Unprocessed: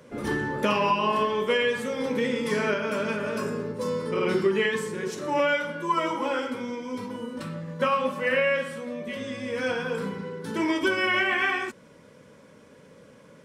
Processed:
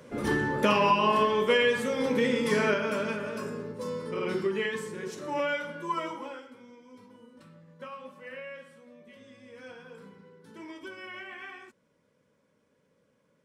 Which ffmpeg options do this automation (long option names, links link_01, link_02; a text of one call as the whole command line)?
ffmpeg -i in.wav -af "volume=0.5dB,afade=type=out:start_time=2.63:duration=0.69:silence=0.473151,afade=type=out:start_time=5.93:duration=0.51:silence=0.237137" out.wav